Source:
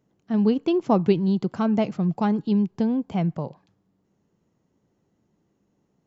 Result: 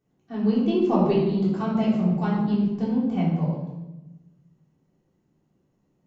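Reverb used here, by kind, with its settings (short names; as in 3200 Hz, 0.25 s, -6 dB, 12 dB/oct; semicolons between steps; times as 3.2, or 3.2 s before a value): shoebox room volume 430 m³, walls mixed, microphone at 3.5 m; gain -10 dB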